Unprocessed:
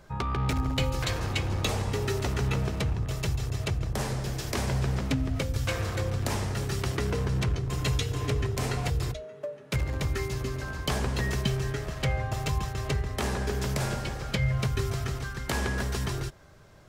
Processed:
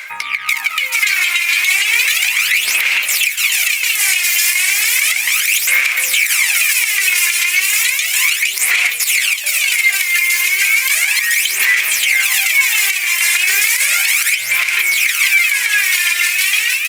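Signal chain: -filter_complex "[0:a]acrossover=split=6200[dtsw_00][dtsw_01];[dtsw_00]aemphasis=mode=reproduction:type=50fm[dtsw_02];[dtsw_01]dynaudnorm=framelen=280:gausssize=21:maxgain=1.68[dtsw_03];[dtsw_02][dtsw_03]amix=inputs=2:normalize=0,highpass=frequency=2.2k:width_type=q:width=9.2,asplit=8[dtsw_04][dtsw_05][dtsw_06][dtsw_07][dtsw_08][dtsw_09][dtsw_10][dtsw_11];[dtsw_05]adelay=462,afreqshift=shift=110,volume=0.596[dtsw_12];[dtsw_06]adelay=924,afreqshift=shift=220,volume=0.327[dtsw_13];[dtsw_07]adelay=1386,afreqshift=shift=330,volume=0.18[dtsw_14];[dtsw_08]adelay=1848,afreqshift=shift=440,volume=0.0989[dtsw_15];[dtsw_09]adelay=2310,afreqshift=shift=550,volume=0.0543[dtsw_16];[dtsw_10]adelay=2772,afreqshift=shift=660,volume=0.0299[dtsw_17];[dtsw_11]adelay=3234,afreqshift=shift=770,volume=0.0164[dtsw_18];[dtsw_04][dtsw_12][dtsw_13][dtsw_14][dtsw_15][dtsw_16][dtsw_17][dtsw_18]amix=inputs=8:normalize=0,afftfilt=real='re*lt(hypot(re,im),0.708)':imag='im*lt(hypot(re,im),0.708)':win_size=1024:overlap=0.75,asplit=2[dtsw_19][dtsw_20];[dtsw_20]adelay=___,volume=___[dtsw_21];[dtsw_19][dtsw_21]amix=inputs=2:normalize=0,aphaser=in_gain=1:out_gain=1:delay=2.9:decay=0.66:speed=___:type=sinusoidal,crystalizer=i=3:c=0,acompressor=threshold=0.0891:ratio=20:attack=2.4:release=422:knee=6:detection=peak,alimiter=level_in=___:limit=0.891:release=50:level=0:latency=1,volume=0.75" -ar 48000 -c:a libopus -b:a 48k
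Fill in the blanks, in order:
15, 0.2, 0.34, 9.44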